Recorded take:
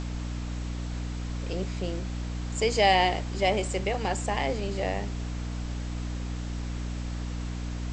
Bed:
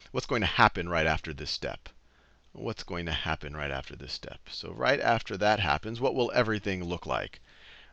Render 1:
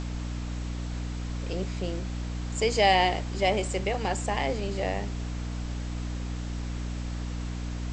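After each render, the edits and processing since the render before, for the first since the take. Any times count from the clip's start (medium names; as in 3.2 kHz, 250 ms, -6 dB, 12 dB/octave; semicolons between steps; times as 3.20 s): no audible change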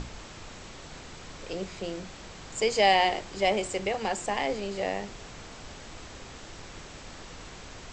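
hum notches 60/120/180/240/300/360 Hz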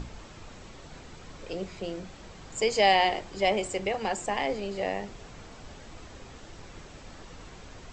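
noise reduction 6 dB, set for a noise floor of -45 dBFS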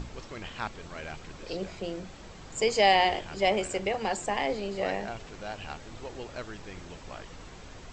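add bed -14 dB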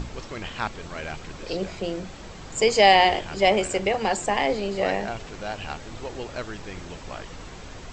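trim +6 dB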